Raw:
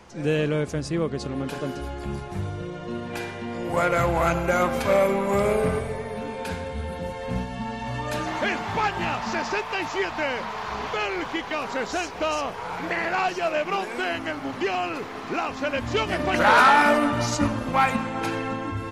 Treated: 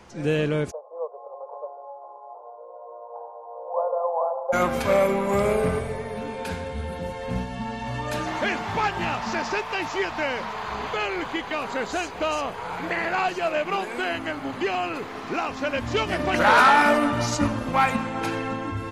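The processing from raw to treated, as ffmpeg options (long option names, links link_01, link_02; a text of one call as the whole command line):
ffmpeg -i in.wav -filter_complex "[0:a]asplit=3[link_01][link_02][link_03];[link_01]afade=type=out:start_time=0.7:duration=0.02[link_04];[link_02]asuperpass=centerf=720:order=12:qfactor=1.2,afade=type=in:start_time=0.7:duration=0.02,afade=type=out:start_time=4.52:duration=0.02[link_05];[link_03]afade=type=in:start_time=4.52:duration=0.02[link_06];[link_04][link_05][link_06]amix=inputs=3:normalize=0,asettb=1/sr,asplit=3[link_07][link_08][link_09];[link_07]atrim=end=10.534[link_10];[link_08]atrim=start=10.53:end=15.08,asetpts=PTS-STARTPTS,afade=type=in:duration=0.004:curve=qsin,afade=type=out:start_time=4.546:duration=0.004:curve=qsin,bandreject=frequency=5500:width=6.3[link_11];[link_09]atrim=start=15.076[link_12];[link_10][link_11]acrossfade=duration=0.004:curve1=hsin:curve2=qsin[link_13];[link_13][link_12]acrossfade=duration=0.004:curve1=qsin:curve2=hsin" out.wav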